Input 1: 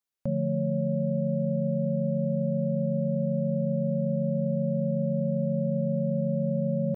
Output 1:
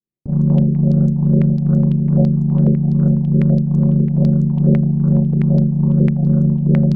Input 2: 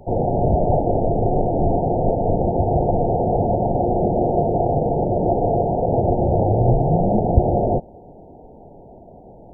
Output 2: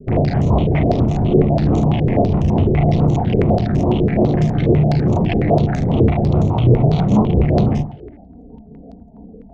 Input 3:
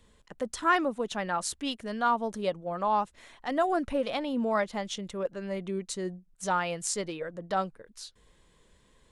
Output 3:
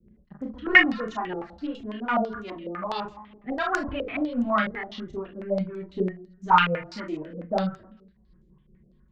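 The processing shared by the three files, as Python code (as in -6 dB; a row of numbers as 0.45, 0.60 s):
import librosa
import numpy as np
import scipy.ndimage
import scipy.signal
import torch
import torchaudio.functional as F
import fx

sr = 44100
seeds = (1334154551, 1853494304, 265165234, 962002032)

p1 = fx.env_lowpass(x, sr, base_hz=460.0, full_db=-15.5)
p2 = fx.highpass(p1, sr, hz=110.0, slope=6)
p3 = fx.peak_eq(p2, sr, hz=500.0, db=-7.5, octaves=0.67)
p4 = fx.rider(p3, sr, range_db=3, speed_s=2.0)
p5 = p3 + F.gain(torch.from_numpy(p4), -3.0).numpy()
p6 = np.clip(10.0 ** (12.5 / 20.0) * p5, -1.0, 1.0) / 10.0 ** (12.5 / 20.0)
p7 = fx.phaser_stages(p6, sr, stages=2, low_hz=430.0, high_hz=1100.0, hz=2.4, feedback_pct=35)
p8 = fx.echo_feedback(p7, sr, ms=134, feedback_pct=44, wet_db=-19)
p9 = fx.rotary(p8, sr, hz=5.0)
p10 = fx.tube_stage(p9, sr, drive_db=24.0, bias=0.4)
p11 = fx.env_flanger(p10, sr, rest_ms=5.6, full_db=-25.0)
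p12 = p11 + fx.room_early_taps(p11, sr, ms=(33, 47, 74), db=(-3.5, -7.5, -14.5), dry=0)
p13 = fx.filter_held_lowpass(p12, sr, hz=12.0, low_hz=450.0, high_hz=6700.0)
y = p13 * 10.0 ** (-1.5 / 20.0) / np.max(np.abs(p13))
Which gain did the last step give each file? +13.5, +10.5, +11.0 dB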